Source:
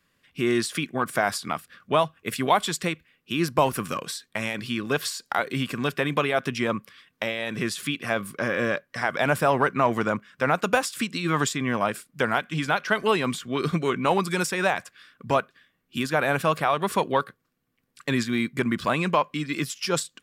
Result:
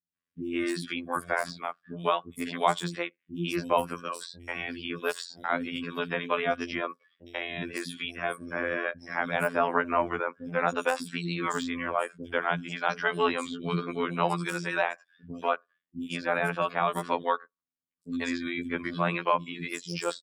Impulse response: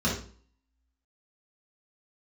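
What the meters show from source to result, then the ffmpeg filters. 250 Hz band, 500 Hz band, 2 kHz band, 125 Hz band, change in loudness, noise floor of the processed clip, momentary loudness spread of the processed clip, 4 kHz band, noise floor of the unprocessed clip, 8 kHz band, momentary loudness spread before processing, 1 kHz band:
-6.0 dB, -5.0 dB, -4.0 dB, -8.0 dB, -5.0 dB, under -85 dBFS, 9 LU, -6.0 dB, -73 dBFS, -10.5 dB, 8 LU, -3.5 dB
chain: -filter_complex "[0:a]lowshelf=f=87:g=-10,afftdn=nr=22:nf=-40,afftfilt=real='hypot(re,im)*cos(PI*b)':imag='0':win_size=2048:overlap=0.75,acrossover=split=300|5100[s0][s1][s2];[s2]adelay=60[s3];[s1]adelay=140[s4];[s0][s4][s3]amix=inputs=3:normalize=0,deesser=0.65"

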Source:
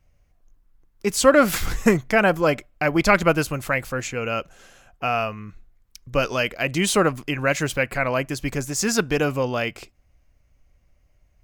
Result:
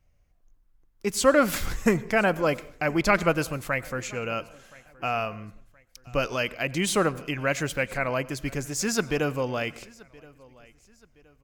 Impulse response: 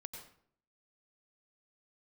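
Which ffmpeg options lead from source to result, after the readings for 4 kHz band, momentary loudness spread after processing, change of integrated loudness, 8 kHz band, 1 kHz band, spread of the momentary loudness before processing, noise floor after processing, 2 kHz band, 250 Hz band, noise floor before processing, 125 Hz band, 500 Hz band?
-4.5 dB, 10 LU, -4.5 dB, -4.5 dB, -4.5 dB, 10 LU, -63 dBFS, -4.5 dB, -4.5 dB, -62 dBFS, -4.5 dB, -4.5 dB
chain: -filter_complex "[0:a]aecho=1:1:1022|2044:0.0631|0.0246,asplit=2[s0][s1];[1:a]atrim=start_sample=2205[s2];[s1][s2]afir=irnorm=-1:irlink=0,volume=0.335[s3];[s0][s3]amix=inputs=2:normalize=0,volume=0.501"

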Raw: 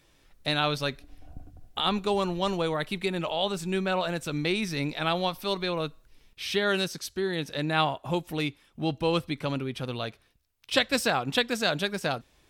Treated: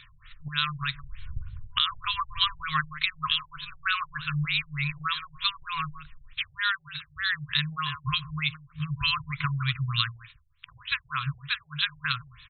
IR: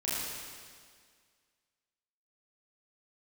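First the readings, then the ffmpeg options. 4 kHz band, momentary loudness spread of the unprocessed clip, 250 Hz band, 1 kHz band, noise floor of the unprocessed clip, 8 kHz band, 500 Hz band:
+2.5 dB, 8 LU, under -10 dB, -1.5 dB, -64 dBFS, under -40 dB, under -40 dB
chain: -filter_complex "[0:a]afftfilt=real='re*(1-between(b*sr/4096,160,1000))':imag='im*(1-between(b*sr/4096,160,1000))':win_size=4096:overlap=0.75,asplit=2[s0][s1];[s1]alimiter=limit=0.0794:level=0:latency=1:release=103,volume=0.794[s2];[s0][s2]amix=inputs=2:normalize=0,crystalizer=i=5:c=0,acompressor=threshold=0.0631:ratio=12,asplit=2[s3][s4];[s4]aecho=0:1:164:0.2[s5];[s3][s5]amix=inputs=2:normalize=0,afftfilt=real='re*lt(b*sr/1024,820*pow(4300/820,0.5+0.5*sin(2*PI*3.3*pts/sr)))':imag='im*lt(b*sr/1024,820*pow(4300/820,0.5+0.5*sin(2*PI*3.3*pts/sr)))':win_size=1024:overlap=0.75,volume=1.68"

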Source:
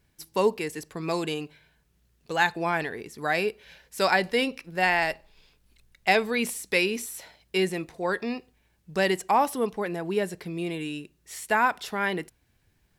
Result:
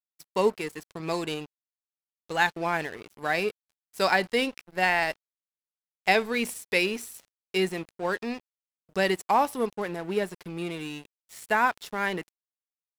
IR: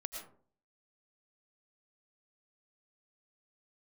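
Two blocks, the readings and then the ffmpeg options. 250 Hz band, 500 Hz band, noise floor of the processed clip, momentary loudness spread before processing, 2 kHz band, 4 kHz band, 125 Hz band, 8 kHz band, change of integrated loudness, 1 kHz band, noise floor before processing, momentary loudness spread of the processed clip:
-1.5 dB, -1.0 dB, under -85 dBFS, 12 LU, -0.5 dB, -0.5 dB, -2.0 dB, -3.5 dB, -1.0 dB, -0.5 dB, -68 dBFS, 13 LU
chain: -af "aeval=exprs='sgn(val(0))*max(abs(val(0))-0.00891,0)':c=same"

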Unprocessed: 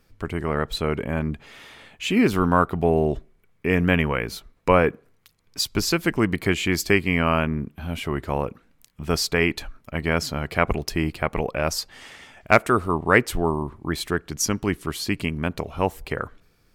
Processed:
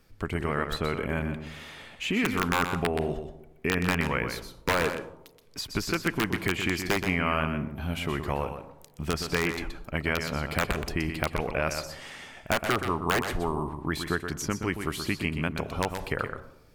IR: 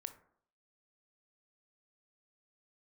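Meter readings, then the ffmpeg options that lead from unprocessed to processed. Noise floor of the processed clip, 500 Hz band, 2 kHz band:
-54 dBFS, -7.0 dB, -4.0 dB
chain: -filter_complex "[0:a]aeval=exprs='(mod(2.66*val(0)+1,2)-1)/2.66':c=same,acrossover=split=1200|2400[s0][s1][s2];[s0]acompressor=threshold=0.0447:ratio=4[s3];[s1]acompressor=threshold=0.0447:ratio=4[s4];[s2]acompressor=threshold=0.0126:ratio=4[s5];[s3][s4][s5]amix=inputs=3:normalize=0,asplit=2[s6][s7];[1:a]atrim=start_sample=2205,asetrate=26460,aresample=44100,adelay=124[s8];[s7][s8]afir=irnorm=-1:irlink=0,volume=0.531[s9];[s6][s9]amix=inputs=2:normalize=0"

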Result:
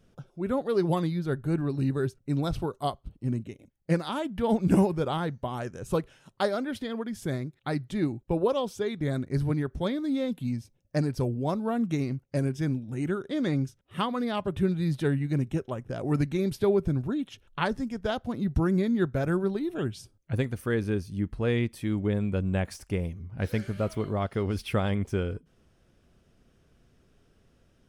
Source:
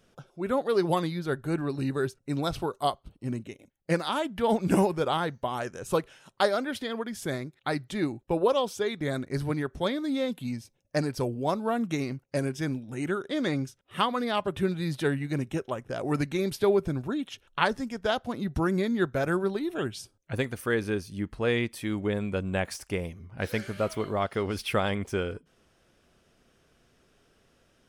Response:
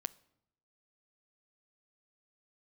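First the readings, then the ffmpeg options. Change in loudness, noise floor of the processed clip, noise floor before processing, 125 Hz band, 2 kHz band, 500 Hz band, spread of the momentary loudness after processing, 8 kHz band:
+0.5 dB, -66 dBFS, -68 dBFS, +4.5 dB, -4.5 dB, -1.5 dB, 7 LU, -5.0 dB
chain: -af "lowshelf=f=290:g=12,volume=0.562"

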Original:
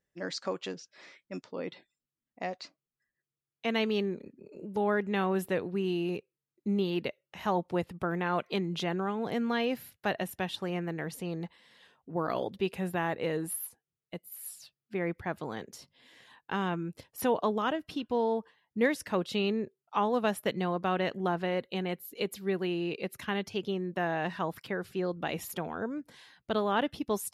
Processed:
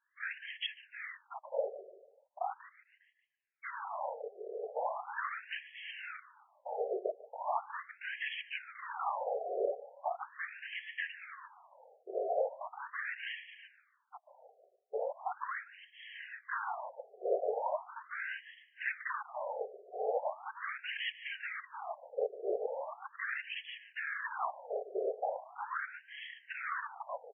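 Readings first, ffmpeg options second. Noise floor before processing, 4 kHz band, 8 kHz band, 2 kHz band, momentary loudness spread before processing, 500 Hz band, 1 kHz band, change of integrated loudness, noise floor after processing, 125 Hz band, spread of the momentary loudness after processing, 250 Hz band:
under -85 dBFS, -6.5 dB, under -35 dB, -1.5 dB, 12 LU, -6.0 dB, -4.0 dB, -6.5 dB, -73 dBFS, under -40 dB, 12 LU, under -25 dB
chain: -af "acontrast=71,apsyclip=5.96,aeval=exprs='(tanh(7.94*val(0)+0.3)-tanh(0.3))/7.94':c=same,acrusher=bits=7:mode=log:mix=0:aa=0.000001,afftfilt=real='hypot(re,im)*cos(2*PI*random(0))':imag='hypot(re,im)*sin(2*PI*random(1))':win_size=512:overlap=0.75,aecho=1:1:147|294|441|588:0.141|0.0706|0.0353|0.0177,afftfilt=real='re*between(b*sr/1024,530*pow(2400/530,0.5+0.5*sin(2*PI*0.39*pts/sr))/1.41,530*pow(2400/530,0.5+0.5*sin(2*PI*0.39*pts/sr))*1.41)':imag='im*between(b*sr/1024,530*pow(2400/530,0.5+0.5*sin(2*PI*0.39*pts/sr))/1.41,530*pow(2400/530,0.5+0.5*sin(2*PI*0.39*pts/sr))*1.41)':win_size=1024:overlap=0.75,volume=0.668"

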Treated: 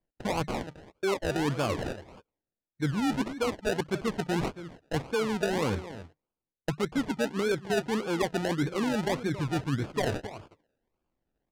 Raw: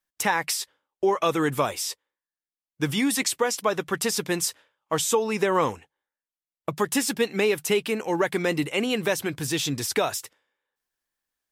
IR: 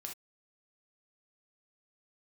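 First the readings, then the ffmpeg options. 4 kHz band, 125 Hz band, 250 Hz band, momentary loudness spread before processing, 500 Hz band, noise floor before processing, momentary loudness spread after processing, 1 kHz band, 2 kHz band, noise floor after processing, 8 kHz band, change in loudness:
-8.5 dB, +2.0 dB, -2.0 dB, 7 LU, -5.0 dB, under -85 dBFS, 9 LU, -6.0 dB, -6.5 dB, under -85 dBFS, -15.5 dB, -5.0 dB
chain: -filter_complex "[0:a]tiltshelf=f=830:g=9,areverse,acompressor=threshold=0.02:ratio=5,areverse,asplit=2[s0][s1];[s1]adelay=274.1,volume=0.224,highshelf=f=4000:g=-6.17[s2];[s0][s2]amix=inputs=2:normalize=0,acrusher=samples=32:mix=1:aa=0.000001:lfo=1:lforange=19.2:lforate=1.7,adynamicsmooth=sensitivity=5:basefreq=5500,volume=2"

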